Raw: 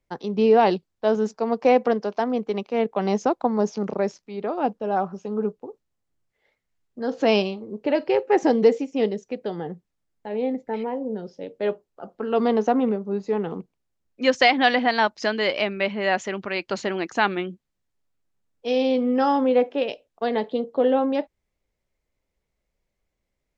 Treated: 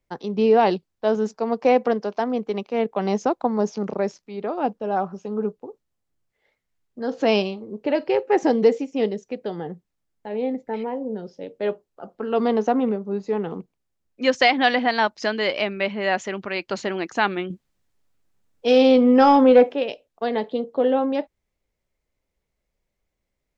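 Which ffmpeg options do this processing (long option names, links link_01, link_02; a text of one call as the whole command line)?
ffmpeg -i in.wav -filter_complex "[0:a]asettb=1/sr,asplit=3[link_01][link_02][link_03];[link_01]atrim=end=17.504[link_04];[link_02]atrim=start=17.5:end=19.74,asetpts=PTS-STARTPTS,afade=type=in:duration=0.004:curve=qsin,afade=type=out:start_time=2.236:duration=0.004:curve=qsin,acontrast=84[link_05];[link_03]atrim=start=19.736[link_06];[link_04][link_05]acrossfade=duration=0.004:curve1=hsin:curve2=qsin[link_07];[link_07][link_06]acrossfade=duration=0.004:curve1=qsin:curve2=hsin" out.wav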